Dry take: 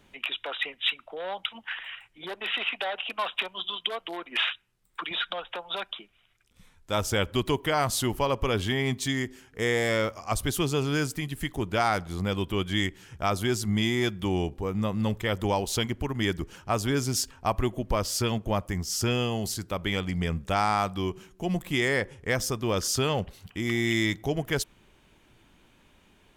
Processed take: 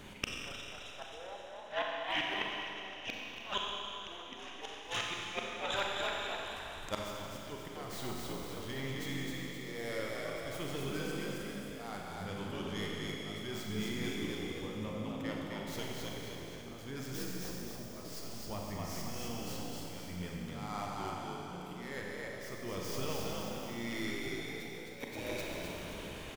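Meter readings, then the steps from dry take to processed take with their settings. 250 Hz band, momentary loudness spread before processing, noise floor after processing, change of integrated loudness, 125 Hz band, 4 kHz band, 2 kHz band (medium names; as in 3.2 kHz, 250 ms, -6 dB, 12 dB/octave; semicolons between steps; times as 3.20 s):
-11.0 dB, 8 LU, -47 dBFS, -11.5 dB, -13.5 dB, -9.5 dB, -10.0 dB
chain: tracing distortion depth 0.12 ms; slow attack 283 ms; on a send: frequency-shifting echo 261 ms, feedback 47%, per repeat +54 Hz, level -3 dB; on the sum: inverted gate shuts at -32 dBFS, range -25 dB; Schroeder reverb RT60 3 s, combs from 30 ms, DRR -1.5 dB; trim +9 dB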